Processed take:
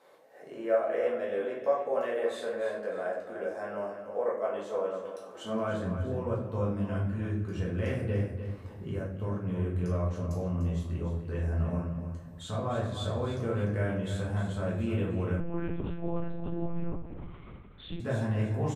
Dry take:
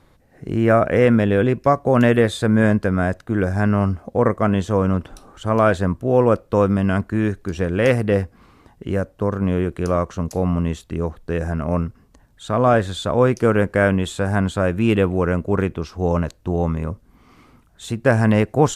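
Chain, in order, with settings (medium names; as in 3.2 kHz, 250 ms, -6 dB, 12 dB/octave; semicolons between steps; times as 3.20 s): compression 2:1, threshold -41 dBFS, peak gain reduction 17 dB; high-pass sweep 530 Hz -> 83 Hz, 5.22–5.86 s; feedback delay 298 ms, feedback 30%, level -10 dB; simulated room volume 120 m³, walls mixed, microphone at 1.5 m; 15.40–18.00 s: monotone LPC vocoder at 8 kHz 170 Hz; trim -8.5 dB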